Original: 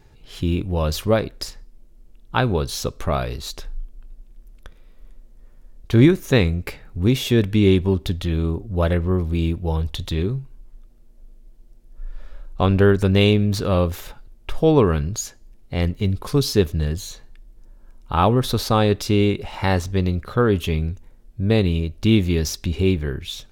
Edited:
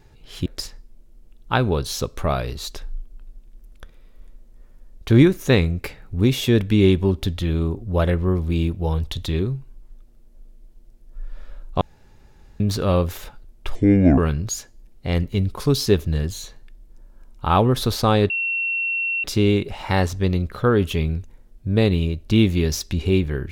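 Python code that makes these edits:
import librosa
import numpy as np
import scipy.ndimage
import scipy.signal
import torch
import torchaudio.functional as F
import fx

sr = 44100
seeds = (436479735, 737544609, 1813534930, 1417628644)

y = fx.edit(x, sr, fx.cut(start_s=0.46, length_s=0.83),
    fx.room_tone_fill(start_s=12.64, length_s=0.79),
    fx.speed_span(start_s=14.58, length_s=0.27, speed=0.63),
    fx.insert_tone(at_s=18.97, length_s=0.94, hz=2720.0, db=-20.5), tone=tone)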